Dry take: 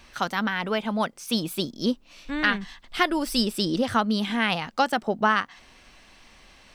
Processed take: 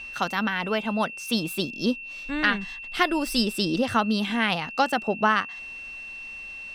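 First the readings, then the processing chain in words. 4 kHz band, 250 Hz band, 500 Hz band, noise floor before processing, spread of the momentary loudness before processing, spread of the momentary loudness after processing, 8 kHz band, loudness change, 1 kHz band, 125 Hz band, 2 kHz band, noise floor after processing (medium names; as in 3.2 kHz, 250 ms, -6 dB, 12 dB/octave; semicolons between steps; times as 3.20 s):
0.0 dB, 0.0 dB, 0.0 dB, -54 dBFS, 7 LU, 13 LU, 0.0 dB, 0.0 dB, 0.0 dB, 0.0 dB, +1.0 dB, -39 dBFS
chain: whistle 2.7 kHz -36 dBFS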